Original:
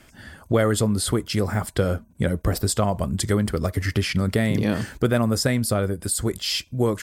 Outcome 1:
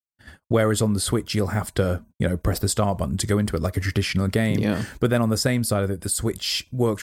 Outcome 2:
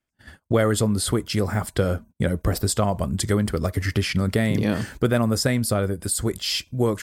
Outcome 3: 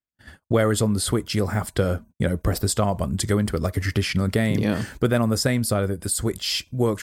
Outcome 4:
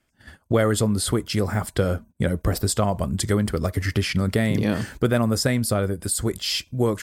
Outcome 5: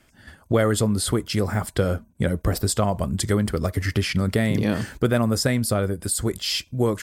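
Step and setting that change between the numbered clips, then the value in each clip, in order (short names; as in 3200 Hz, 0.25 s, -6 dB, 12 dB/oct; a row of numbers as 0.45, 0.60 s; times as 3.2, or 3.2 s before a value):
gate, range: -58, -32, -46, -19, -7 dB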